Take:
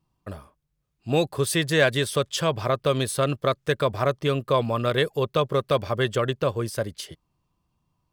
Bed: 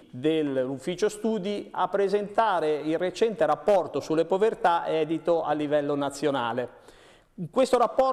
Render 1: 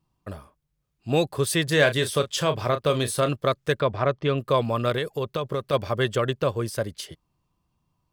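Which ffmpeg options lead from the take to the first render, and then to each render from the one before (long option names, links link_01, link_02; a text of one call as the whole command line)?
ffmpeg -i in.wav -filter_complex "[0:a]asettb=1/sr,asplit=3[link_01][link_02][link_03];[link_01]atrim=end=1.644[link_04];[link_02]atrim=start=1.64:end=3.29,asetpts=PTS-STARTPTS,afade=type=in:duration=0.004:curve=qsin,afade=type=out:start_time=1.646:duration=0.004:curve=qsin,asplit=2[link_05][link_06];[link_06]adelay=33,volume=-10dB[link_07];[link_05][link_07]amix=inputs=2:normalize=0,atrim=end_sample=72765[link_08];[link_03]atrim=start=3.286[link_09];[link_04][link_08]acrossfade=duration=0.004:curve1=hsin:curve2=qsin[link_10];[link_10][link_09]acrossfade=duration=0.004:curve1=qsin:curve2=hsin,asettb=1/sr,asplit=3[link_11][link_12][link_13];[link_11]atrim=end=3.804[link_14];[link_12]atrim=start=3.8:end=4.38,asetpts=PTS-STARTPTS,afade=type=in:duration=0.004:curve=qsin,afade=type=out:start_time=0.576:duration=0.004:curve=qsin,lowpass=3700[link_15];[link_13]atrim=start=4.376[link_16];[link_14][link_15]acrossfade=duration=0.004:curve1=hsin:curve2=qsin[link_17];[link_17][link_16]acrossfade=duration=0.004:curve1=qsin:curve2=hsin,asplit=3[link_18][link_19][link_20];[link_18]afade=type=out:start_time=4.93:duration=0.02[link_21];[link_19]acompressor=threshold=-22dB:ratio=6:attack=3.2:release=140:knee=1:detection=peak,afade=type=in:start_time=4.93:duration=0.02,afade=type=out:start_time=5.72:duration=0.02[link_22];[link_20]afade=type=in:start_time=5.72:duration=0.02[link_23];[link_21][link_22][link_23]amix=inputs=3:normalize=0" out.wav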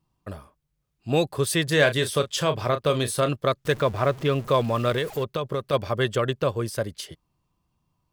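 ffmpeg -i in.wav -filter_complex "[0:a]asettb=1/sr,asplit=3[link_01][link_02][link_03];[link_01]atrim=end=3.654[link_04];[link_02]atrim=start=3.65:end=5.24,asetpts=PTS-STARTPTS,afade=type=in:duration=0.004:curve=qsin,afade=type=out:start_time=1.586:duration=0.004:curve=qsin,aeval=exprs='val(0)+0.5*0.0158*sgn(val(0))':channel_layout=same[link_05];[link_03]atrim=start=5.236[link_06];[link_04][link_05]acrossfade=duration=0.004:curve1=hsin:curve2=qsin[link_07];[link_07][link_06]acrossfade=duration=0.004:curve1=qsin:curve2=hsin" out.wav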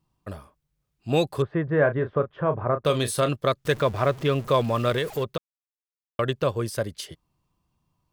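ffmpeg -i in.wav -filter_complex "[0:a]asettb=1/sr,asplit=3[link_01][link_02][link_03];[link_01]atrim=end=1.424[link_04];[link_02]atrim=start=1.42:end=2.85,asetpts=PTS-STARTPTS,afade=type=in:duration=0.004:curve=qsin,afade=type=out:start_time=1.426:duration=0.004:curve=qsin,lowpass=frequency=1500:width=0.5412,lowpass=frequency=1500:width=1.3066[link_05];[link_03]atrim=start=2.846[link_06];[link_04][link_05]acrossfade=duration=0.004:curve1=hsin:curve2=qsin[link_07];[link_07][link_06]acrossfade=duration=0.004:curve1=qsin:curve2=hsin,asplit=3[link_08][link_09][link_10];[link_08]atrim=end=5.38,asetpts=PTS-STARTPTS,afade=type=out:start_time=5.376:duration=0.004:curve=hsin[link_11];[link_09]atrim=start=5.38:end=6.19,asetpts=PTS-STARTPTS,volume=0[link_12];[link_10]atrim=start=6.19,asetpts=PTS-STARTPTS,afade=type=in:duration=0.004:curve=hsin[link_13];[link_11][link_12][link_13]concat=n=3:v=0:a=1" out.wav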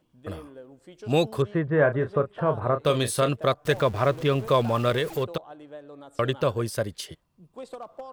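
ffmpeg -i in.wav -i bed.wav -filter_complex "[1:a]volume=-18dB[link_01];[0:a][link_01]amix=inputs=2:normalize=0" out.wav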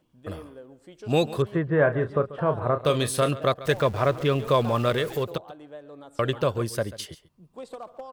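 ffmpeg -i in.wav -af "aecho=1:1:139:0.141" out.wav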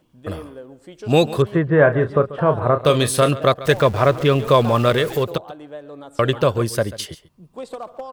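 ffmpeg -i in.wav -af "volume=7dB" out.wav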